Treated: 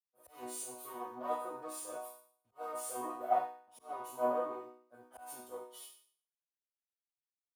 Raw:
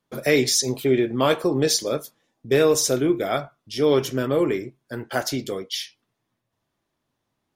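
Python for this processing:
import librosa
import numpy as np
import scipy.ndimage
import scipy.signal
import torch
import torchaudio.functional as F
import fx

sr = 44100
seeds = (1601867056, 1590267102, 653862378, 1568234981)

y = fx.high_shelf_res(x, sr, hz=7100.0, db=11.0, q=3.0)
y = fx.tube_stage(y, sr, drive_db=28.0, bias=0.6)
y = fx.quant_dither(y, sr, seeds[0], bits=8, dither='none')
y = fx.resonator_bank(y, sr, root=59, chord='major', decay_s=0.82)
y = fx.small_body(y, sr, hz=(700.0, 1000.0), ring_ms=35, db=7, at=(1.95, 4.36))
y = fx.auto_swell(y, sr, attack_ms=123.0)
y = scipy.signal.sosfilt(scipy.signal.butter(4, 58.0, 'highpass', fs=sr, output='sos'), y)
y = fx.band_shelf(y, sr, hz=780.0, db=14.5, octaves=1.7)
y = fx.band_widen(y, sr, depth_pct=100)
y = y * librosa.db_to_amplitude(5.0)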